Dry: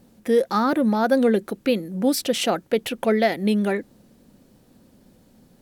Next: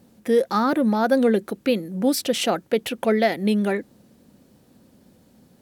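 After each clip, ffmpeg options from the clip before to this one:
-af "highpass=55"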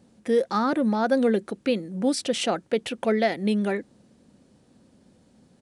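-af "aresample=22050,aresample=44100,volume=0.708"

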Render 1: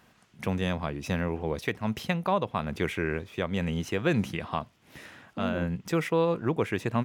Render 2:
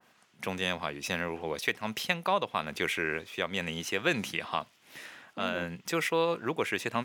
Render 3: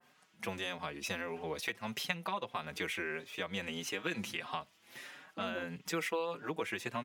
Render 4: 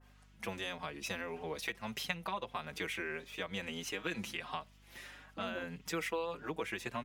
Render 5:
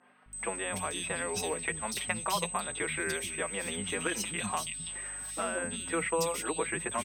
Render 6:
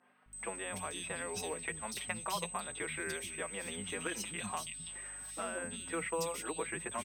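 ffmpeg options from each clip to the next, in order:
-af "highpass=f=480:p=1,adynamicequalizer=threshold=0.00562:dfrequency=1700:dqfactor=0.7:tfrequency=1700:tqfactor=0.7:attack=5:release=100:ratio=0.375:range=3:mode=boostabove:tftype=highshelf"
-filter_complex "[0:a]acompressor=threshold=0.0282:ratio=3,asplit=2[s0][s1];[s1]adelay=5.3,afreqshift=1.6[s2];[s0][s2]amix=inputs=2:normalize=1"
-af "aeval=exprs='val(0)+0.001*(sin(2*PI*50*n/s)+sin(2*PI*2*50*n/s)/2+sin(2*PI*3*50*n/s)/3+sin(2*PI*4*50*n/s)/4+sin(2*PI*5*50*n/s)/5)':c=same,volume=0.841"
-filter_complex "[0:a]aeval=exprs='val(0)+0.00562*sin(2*PI*8200*n/s)':c=same,acrossover=split=230|2800[s0][s1][s2];[s0]adelay=260[s3];[s2]adelay=330[s4];[s3][s1][s4]amix=inputs=3:normalize=0,volume=2.24"
-af "acrusher=bits=9:mode=log:mix=0:aa=0.000001,volume=0.501"

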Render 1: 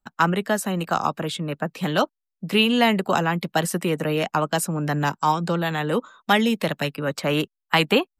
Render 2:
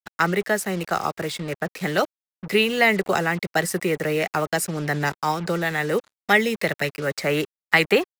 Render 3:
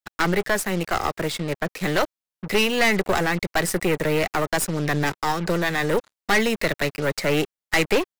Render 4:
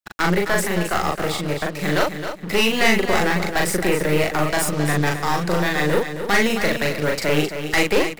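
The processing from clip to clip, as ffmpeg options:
-af "equalizer=f=160:t=o:w=0.33:g=-3,equalizer=f=250:t=o:w=0.33:g=-10,equalizer=f=400:t=o:w=0.33:g=5,equalizer=f=1000:t=o:w=0.33:g=-8,equalizer=f=2000:t=o:w=0.33:g=10,equalizer=f=3150:t=o:w=0.33:g=-7,equalizer=f=5000:t=o:w=0.33:g=4,acrusher=bits=5:mix=0:aa=0.5"
-af "aeval=exprs='(tanh(10*val(0)+0.65)-tanh(0.65))/10':c=same,volume=1.78"
-filter_complex "[0:a]asplit=2[s0][s1];[s1]adelay=40,volume=0.794[s2];[s0][s2]amix=inputs=2:normalize=0,asplit=2[s3][s4];[s4]aecho=0:1:266|532|798:0.355|0.0887|0.0222[s5];[s3][s5]amix=inputs=2:normalize=0"

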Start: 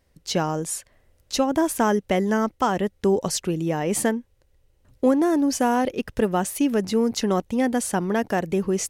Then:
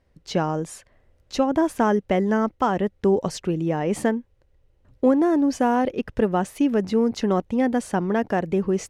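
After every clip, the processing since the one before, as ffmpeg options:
-af "aemphasis=mode=reproduction:type=75kf,volume=1.12"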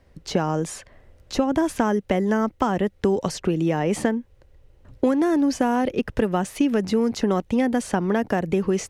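-filter_complex "[0:a]acrossover=split=240|1600|7600[s0][s1][s2][s3];[s0]acompressor=threshold=0.0158:ratio=4[s4];[s1]acompressor=threshold=0.0282:ratio=4[s5];[s2]acompressor=threshold=0.00631:ratio=4[s6];[s3]acompressor=threshold=0.00282:ratio=4[s7];[s4][s5][s6][s7]amix=inputs=4:normalize=0,volume=2.66"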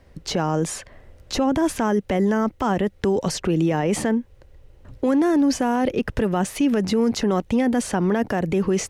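-af "alimiter=limit=0.141:level=0:latency=1:release=13,volume=1.68"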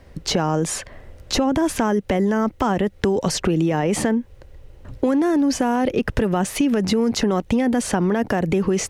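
-af "acompressor=threshold=0.0891:ratio=6,volume=1.88"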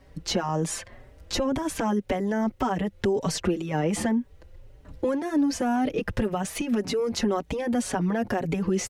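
-filter_complex "[0:a]asplit=2[s0][s1];[s1]adelay=4.9,afreqshift=1.9[s2];[s0][s2]amix=inputs=2:normalize=1,volume=0.708"

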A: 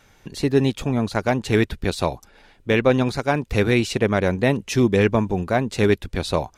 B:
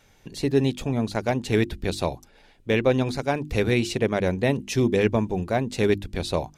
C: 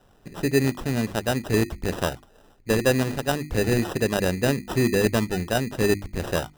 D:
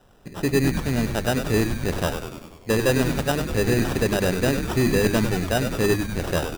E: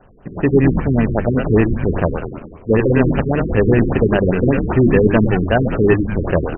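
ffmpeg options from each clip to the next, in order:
-af "equalizer=f=1300:t=o:w=0.94:g=-5,bandreject=f=50:t=h:w=6,bandreject=f=100:t=h:w=6,bandreject=f=150:t=h:w=6,bandreject=f=200:t=h:w=6,bandreject=f=250:t=h:w=6,bandreject=f=300:t=h:w=6,bandreject=f=350:t=h:w=6,volume=0.75"
-af "acrusher=samples=20:mix=1:aa=0.000001"
-filter_complex "[0:a]asoftclip=type=tanh:threshold=0.2,asplit=9[s0][s1][s2][s3][s4][s5][s6][s7][s8];[s1]adelay=98,afreqshift=-100,volume=0.447[s9];[s2]adelay=196,afreqshift=-200,volume=0.275[s10];[s3]adelay=294,afreqshift=-300,volume=0.172[s11];[s4]adelay=392,afreqshift=-400,volume=0.106[s12];[s5]adelay=490,afreqshift=-500,volume=0.0661[s13];[s6]adelay=588,afreqshift=-600,volume=0.0407[s14];[s7]adelay=686,afreqshift=-700,volume=0.0254[s15];[s8]adelay=784,afreqshift=-800,volume=0.0157[s16];[s0][s9][s10][s11][s12][s13][s14][s15][s16]amix=inputs=9:normalize=0,volume=1.26"
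-af "afftfilt=real='re*lt(b*sr/1024,440*pow(3200/440,0.5+0.5*sin(2*PI*5.1*pts/sr)))':imag='im*lt(b*sr/1024,440*pow(3200/440,0.5+0.5*sin(2*PI*5.1*pts/sr)))':win_size=1024:overlap=0.75,volume=2.51"

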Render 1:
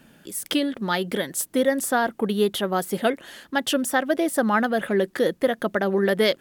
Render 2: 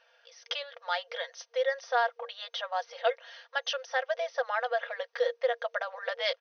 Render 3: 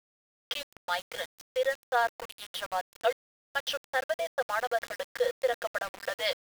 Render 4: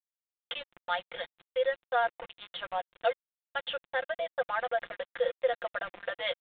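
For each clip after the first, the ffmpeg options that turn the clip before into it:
-af "aecho=1:1:4.3:0.53,afftfilt=real='re*between(b*sr/4096,470,6300)':imag='im*between(b*sr/4096,470,6300)':win_size=4096:overlap=0.75,volume=0.447"
-af "aeval=exprs='val(0)*gte(abs(val(0)),0.0158)':c=same"
-af "aecho=1:1:5.7:0.41,aresample=8000,aresample=44100,volume=0.75"

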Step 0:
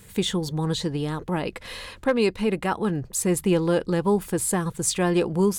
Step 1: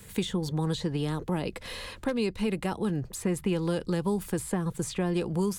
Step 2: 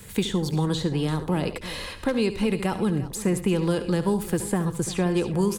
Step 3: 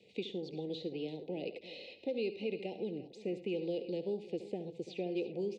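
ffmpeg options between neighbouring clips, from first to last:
-filter_complex "[0:a]acrossover=split=210|810|3200[s0][s1][s2][s3];[s0]acompressor=threshold=0.0316:ratio=4[s4];[s1]acompressor=threshold=0.0282:ratio=4[s5];[s2]acompressor=threshold=0.00794:ratio=4[s6];[s3]acompressor=threshold=0.00891:ratio=4[s7];[s4][s5][s6][s7]amix=inputs=4:normalize=0"
-af "aecho=1:1:72|110|346:0.237|0.126|0.158,volume=1.68"
-af "asuperstop=centerf=1300:order=8:qfactor=0.69,highpass=460,equalizer=f=620:t=q:w=4:g=-5,equalizer=f=1300:t=q:w=4:g=-5,equalizer=f=3200:t=q:w=4:g=-9,lowpass=f=3400:w=0.5412,lowpass=f=3400:w=1.3066,volume=0.562"

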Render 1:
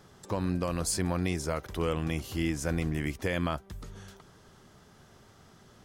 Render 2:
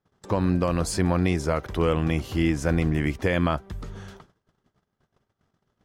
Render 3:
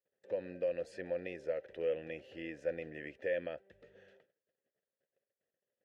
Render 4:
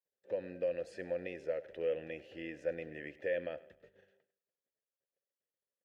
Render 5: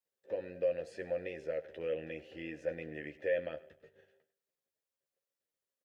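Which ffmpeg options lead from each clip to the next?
-af "agate=range=0.0251:threshold=0.00251:ratio=16:detection=peak,highshelf=f=4900:g=-11.5,volume=2.37"
-filter_complex "[0:a]asplit=3[s0][s1][s2];[s0]bandpass=f=530:t=q:w=8,volume=1[s3];[s1]bandpass=f=1840:t=q:w=8,volume=0.501[s4];[s2]bandpass=f=2480:t=q:w=8,volume=0.355[s5];[s3][s4][s5]amix=inputs=3:normalize=0,volume=0.631"
-af "agate=range=0.316:threshold=0.00112:ratio=16:detection=peak,aecho=1:1:102|204|306:0.112|0.0471|0.0198"
-filter_complex "[0:a]asplit=2[s0][s1];[s1]adelay=13,volume=0.501[s2];[s0][s2]amix=inputs=2:normalize=0"

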